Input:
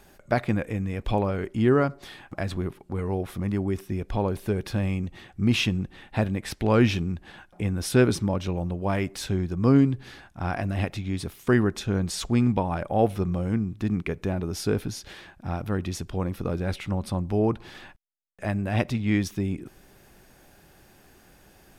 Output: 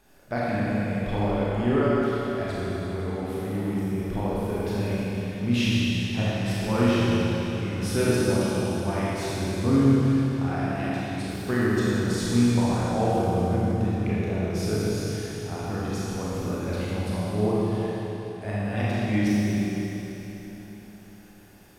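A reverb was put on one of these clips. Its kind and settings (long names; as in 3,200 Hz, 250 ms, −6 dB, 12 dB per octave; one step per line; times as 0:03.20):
four-comb reverb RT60 3.8 s, combs from 26 ms, DRR −8.5 dB
level −8 dB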